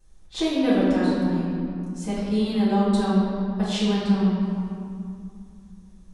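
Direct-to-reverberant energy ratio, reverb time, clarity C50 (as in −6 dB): −12.5 dB, 2.6 s, −2.5 dB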